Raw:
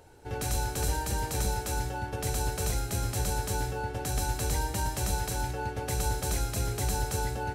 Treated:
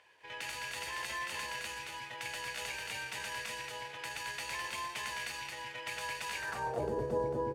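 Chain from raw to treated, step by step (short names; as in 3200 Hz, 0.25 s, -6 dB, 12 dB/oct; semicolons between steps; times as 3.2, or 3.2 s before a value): echo 0.218 s -3.5 dB; pitch shift +2 st; band-pass sweep 2400 Hz -> 400 Hz, 6.37–6.9; gain +6 dB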